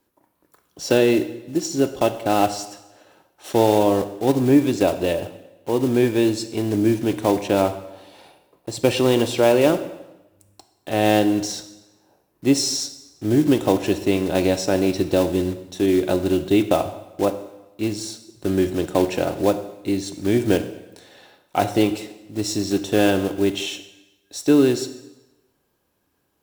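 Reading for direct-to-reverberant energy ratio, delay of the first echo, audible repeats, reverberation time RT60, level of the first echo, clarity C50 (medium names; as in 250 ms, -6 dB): 9.5 dB, no echo, no echo, 1.0 s, no echo, 12.5 dB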